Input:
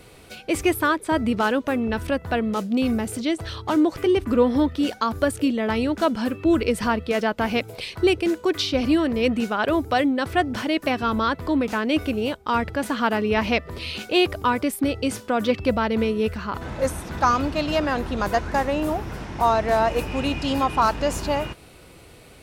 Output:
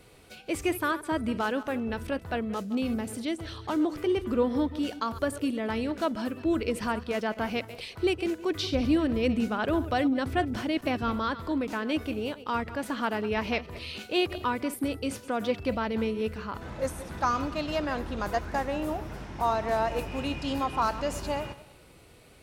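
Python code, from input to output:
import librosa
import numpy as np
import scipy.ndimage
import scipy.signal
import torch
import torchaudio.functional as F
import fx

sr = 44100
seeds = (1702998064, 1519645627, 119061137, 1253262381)

y = fx.reverse_delay_fb(x, sr, ms=102, feedback_pct=42, wet_db=-14.0)
y = fx.low_shelf(y, sr, hz=230.0, db=8.0, at=(8.5, 11.12))
y = y * librosa.db_to_amplitude(-7.5)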